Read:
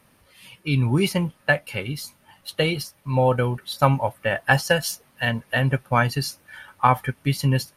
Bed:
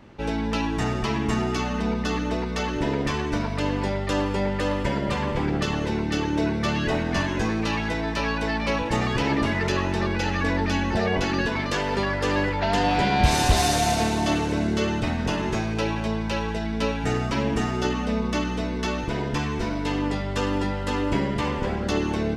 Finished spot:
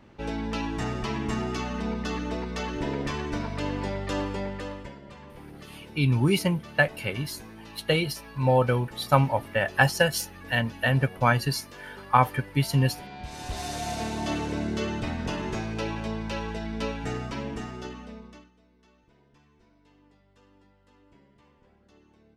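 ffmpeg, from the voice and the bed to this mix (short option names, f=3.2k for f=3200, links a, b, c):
-filter_complex "[0:a]adelay=5300,volume=-2dB[a];[1:a]volume=10dB,afade=t=out:st=4.21:d=0.76:silence=0.16788,afade=t=in:st=13.3:d=1.13:silence=0.177828,afade=t=out:st=16.8:d=1.71:silence=0.0334965[b];[a][b]amix=inputs=2:normalize=0"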